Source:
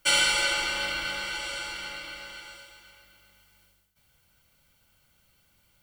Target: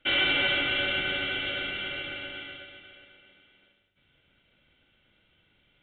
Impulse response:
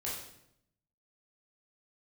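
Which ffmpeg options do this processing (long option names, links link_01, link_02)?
-filter_complex "[0:a]lowshelf=frequency=130:gain=-7.5,bandreject=frequency=50:width_type=h:width=6,bandreject=frequency=100:width_type=h:width=6,bandreject=frequency=150:width_type=h:width=6,acrossover=split=1300[link_01][link_02];[link_01]acrusher=samples=39:mix=1:aa=0.000001[link_03];[link_03][link_02]amix=inputs=2:normalize=0,asoftclip=type=tanh:threshold=-25dB,asplit=2[link_04][link_05];[1:a]atrim=start_sample=2205,highshelf=frequency=3900:gain=10.5[link_06];[link_05][link_06]afir=irnorm=-1:irlink=0,volume=-8.5dB[link_07];[link_04][link_07]amix=inputs=2:normalize=0,aresample=8000,aresample=44100,volume=2.5dB"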